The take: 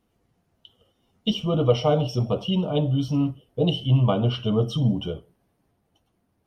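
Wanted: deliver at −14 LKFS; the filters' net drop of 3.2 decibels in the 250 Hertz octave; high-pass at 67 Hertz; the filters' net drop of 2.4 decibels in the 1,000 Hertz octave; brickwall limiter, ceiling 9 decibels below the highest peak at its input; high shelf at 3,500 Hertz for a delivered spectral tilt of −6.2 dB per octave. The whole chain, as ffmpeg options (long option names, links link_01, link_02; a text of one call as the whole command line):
ffmpeg -i in.wav -af "highpass=67,equalizer=frequency=250:width_type=o:gain=-4.5,equalizer=frequency=1000:width_type=o:gain=-3.5,highshelf=frequency=3500:gain=3.5,volume=12.5dB,alimiter=limit=-3.5dB:level=0:latency=1" out.wav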